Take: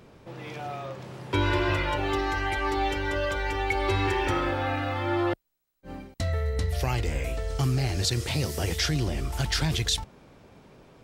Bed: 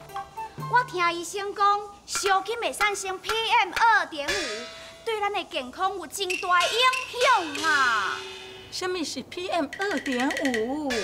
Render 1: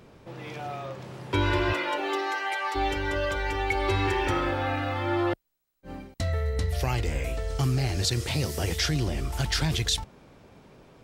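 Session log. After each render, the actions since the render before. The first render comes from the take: 1.72–2.74 HPF 210 Hz -> 600 Hz 24 dB/oct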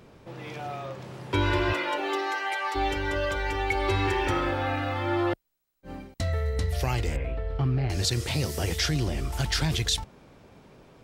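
7.16–7.9 air absorption 440 m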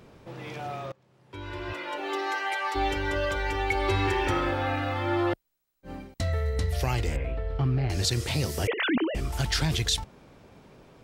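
0.92–2.32 fade in quadratic, from -24 dB; 8.67–9.15 sine-wave speech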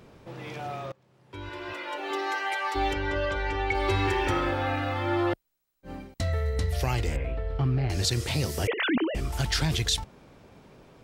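1.49–2.11 HPF 280 Hz 6 dB/oct; 2.93–3.75 air absorption 90 m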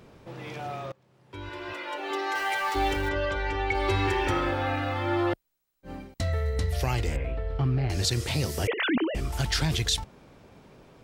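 2.35–3.09 zero-crossing step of -36 dBFS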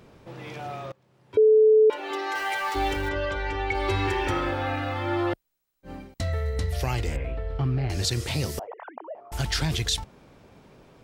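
1.37–1.9 bleep 434 Hz -13 dBFS; 8.59–9.32 Butterworth band-pass 780 Hz, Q 1.9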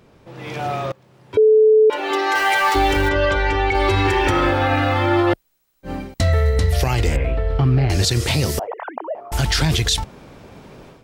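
AGC gain up to 12 dB; limiter -8.5 dBFS, peak gain reduction 6 dB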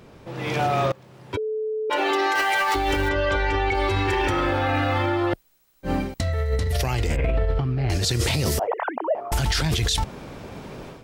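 negative-ratio compressor -21 dBFS, ratio -1; limiter -13.5 dBFS, peak gain reduction 8 dB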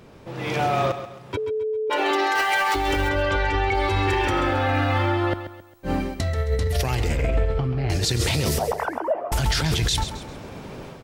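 feedback echo 0.134 s, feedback 38%, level -11 dB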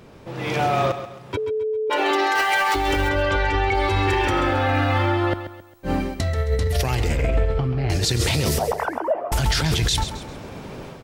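gain +1.5 dB

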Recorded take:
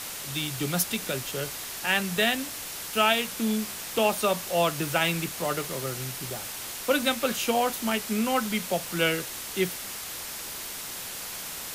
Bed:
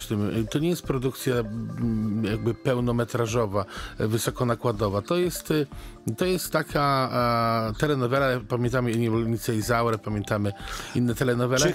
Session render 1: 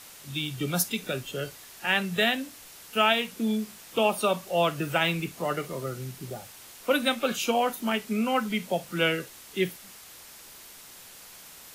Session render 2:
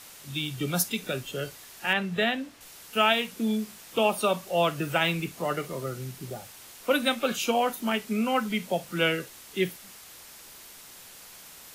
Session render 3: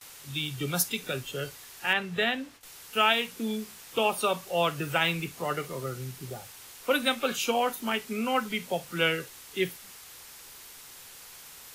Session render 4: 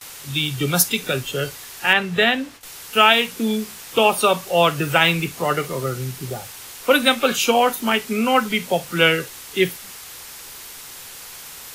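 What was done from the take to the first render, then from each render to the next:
noise print and reduce 11 dB
1.93–2.61 LPF 2600 Hz 6 dB/oct
gate with hold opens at -38 dBFS; thirty-one-band EQ 200 Hz -8 dB, 315 Hz -4 dB, 630 Hz -5 dB
gain +10 dB; limiter -1 dBFS, peak gain reduction 1 dB

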